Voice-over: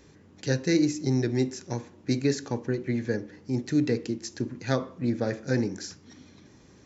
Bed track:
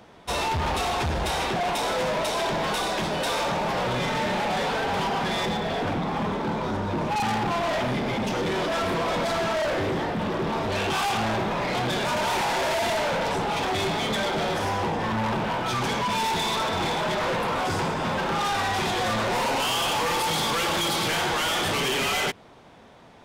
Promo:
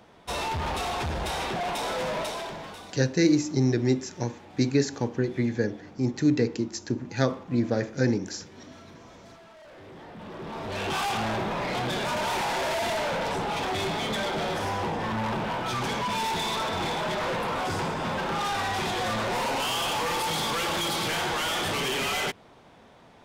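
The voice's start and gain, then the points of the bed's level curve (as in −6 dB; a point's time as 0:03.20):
2.50 s, +2.0 dB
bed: 0:02.21 −4 dB
0:03.16 −25.5 dB
0:09.57 −25.5 dB
0:10.93 −3 dB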